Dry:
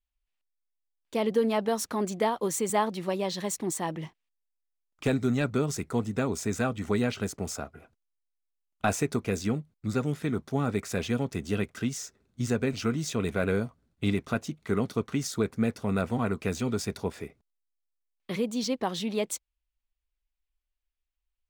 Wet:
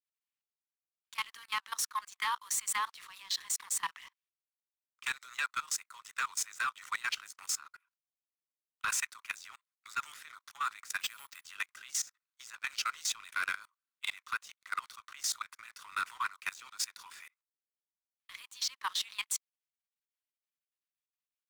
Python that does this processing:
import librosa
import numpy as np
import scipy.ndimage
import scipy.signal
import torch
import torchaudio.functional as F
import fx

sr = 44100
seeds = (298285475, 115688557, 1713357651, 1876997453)

y = fx.resample_bad(x, sr, factor=4, down='none', up='hold', at=(11.0, 11.45))
y = scipy.signal.sosfilt(scipy.signal.butter(12, 1000.0, 'highpass', fs=sr, output='sos'), y)
y = fx.level_steps(y, sr, step_db=19)
y = fx.leveller(y, sr, passes=2)